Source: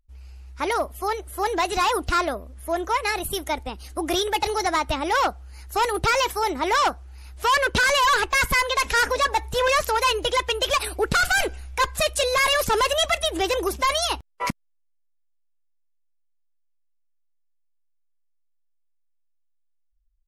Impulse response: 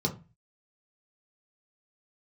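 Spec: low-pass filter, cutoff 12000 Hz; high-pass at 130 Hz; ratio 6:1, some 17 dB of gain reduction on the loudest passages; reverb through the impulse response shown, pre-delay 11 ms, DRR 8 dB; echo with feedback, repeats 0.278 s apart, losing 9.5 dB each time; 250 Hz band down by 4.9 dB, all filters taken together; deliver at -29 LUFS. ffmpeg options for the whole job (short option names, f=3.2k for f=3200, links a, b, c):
-filter_complex "[0:a]highpass=130,lowpass=12k,equalizer=f=250:t=o:g=-8,acompressor=threshold=-37dB:ratio=6,aecho=1:1:278|556|834|1112:0.335|0.111|0.0365|0.012,asplit=2[a][b];[1:a]atrim=start_sample=2205,adelay=11[c];[b][c]afir=irnorm=-1:irlink=0,volume=-15dB[d];[a][d]amix=inputs=2:normalize=0,volume=8dB"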